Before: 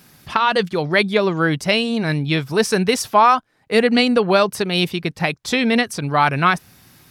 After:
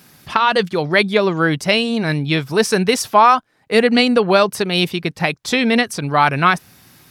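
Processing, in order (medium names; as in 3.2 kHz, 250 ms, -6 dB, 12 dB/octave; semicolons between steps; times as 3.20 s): bass shelf 77 Hz -6.5 dB; trim +2 dB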